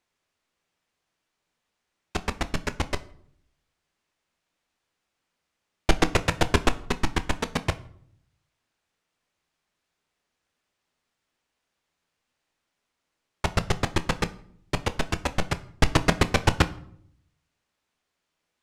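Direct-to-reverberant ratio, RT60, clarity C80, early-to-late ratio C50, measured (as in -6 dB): 10.5 dB, 0.65 s, 21.5 dB, 18.0 dB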